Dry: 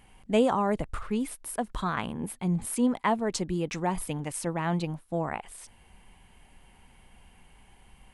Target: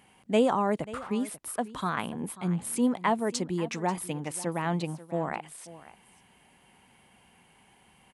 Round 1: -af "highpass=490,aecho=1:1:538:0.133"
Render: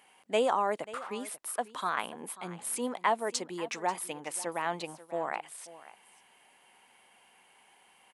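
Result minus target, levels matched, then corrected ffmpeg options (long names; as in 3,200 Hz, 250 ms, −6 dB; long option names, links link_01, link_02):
125 Hz band −13.0 dB
-af "highpass=140,aecho=1:1:538:0.133"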